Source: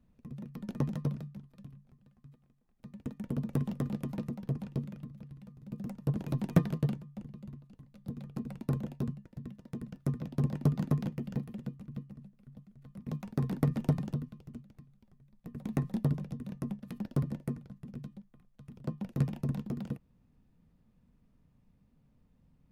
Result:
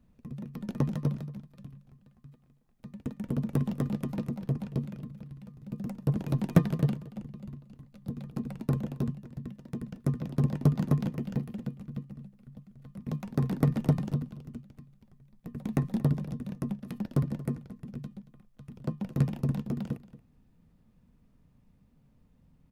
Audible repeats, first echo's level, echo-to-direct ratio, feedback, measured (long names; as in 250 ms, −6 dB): 1, −17.5 dB, −17.5 dB, repeats not evenly spaced